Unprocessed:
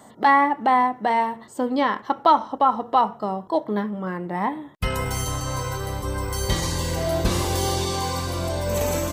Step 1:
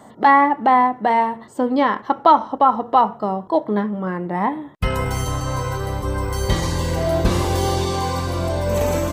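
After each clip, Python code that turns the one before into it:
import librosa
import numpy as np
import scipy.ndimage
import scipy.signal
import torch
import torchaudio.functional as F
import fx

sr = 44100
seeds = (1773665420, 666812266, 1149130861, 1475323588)

y = fx.high_shelf(x, sr, hz=3100.0, db=-8.0)
y = y * librosa.db_to_amplitude(4.5)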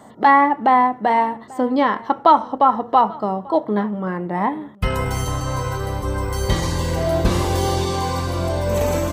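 y = x + 10.0 ** (-23.0 / 20.0) * np.pad(x, (int(839 * sr / 1000.0), 0))[:len(x)]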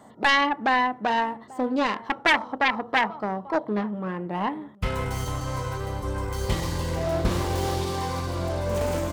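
y = fx.self_delay(x, sr, depth_ms=0.38)
y = y * librosa.db_to_amplitude(-6.0)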